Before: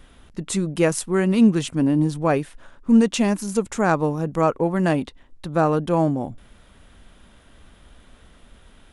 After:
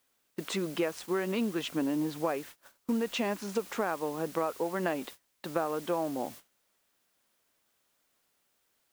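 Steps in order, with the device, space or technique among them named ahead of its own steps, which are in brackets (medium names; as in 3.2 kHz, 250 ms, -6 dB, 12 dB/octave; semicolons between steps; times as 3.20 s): baby monitor (band-pass 360–3700 Hz; compression 10:1, threshold -27 dBFS, peak gain reduction 14 dB; white noise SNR 16 dB; gate -45 dBFS, range -25 dB)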